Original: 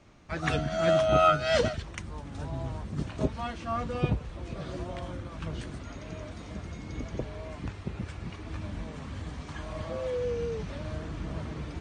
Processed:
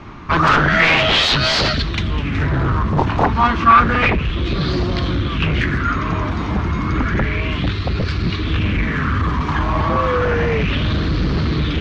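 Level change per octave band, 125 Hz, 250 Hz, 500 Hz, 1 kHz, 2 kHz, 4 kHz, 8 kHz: +16.0 dB, +15.5 dB, +7.0 dB, +16.0 dB, +20.0 dB, +20.0 dB, no reading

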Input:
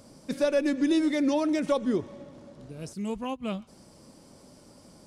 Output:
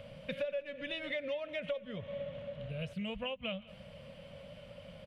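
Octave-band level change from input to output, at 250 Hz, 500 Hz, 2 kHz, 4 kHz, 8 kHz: -18.0 dB, -9.0 dB, -3.0 dB, -2.5 dB, under -20 dB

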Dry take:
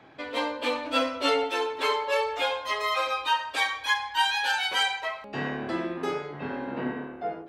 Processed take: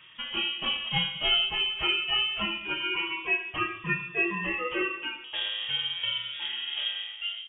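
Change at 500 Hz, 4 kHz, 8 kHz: -10.0 dB, +4.5 dB, under -40 dB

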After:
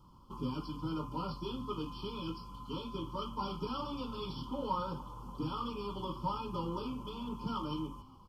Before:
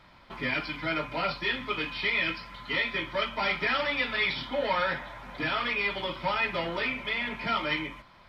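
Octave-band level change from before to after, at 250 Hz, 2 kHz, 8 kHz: -1.0 dB, -30.5 dB, no reading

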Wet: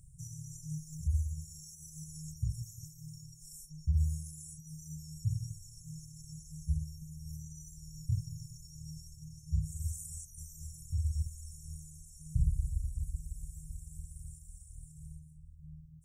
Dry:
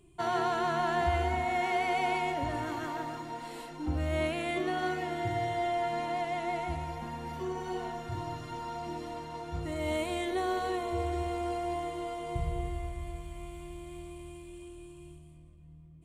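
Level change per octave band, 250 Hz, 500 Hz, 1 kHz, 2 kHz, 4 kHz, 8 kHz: under -10 dB, under -40 dB, under -40 dB, under -40 dB, -14.5 dB, +5.0 dB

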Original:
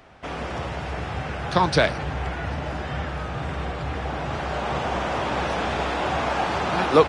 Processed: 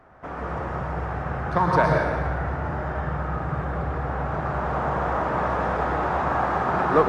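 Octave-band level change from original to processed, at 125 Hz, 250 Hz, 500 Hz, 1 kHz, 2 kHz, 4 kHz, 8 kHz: +2.0 dB, 0.0 dB, -1.0 dB, +1.5 dB, -1.5 dB, -14.5 dB, under -10 dB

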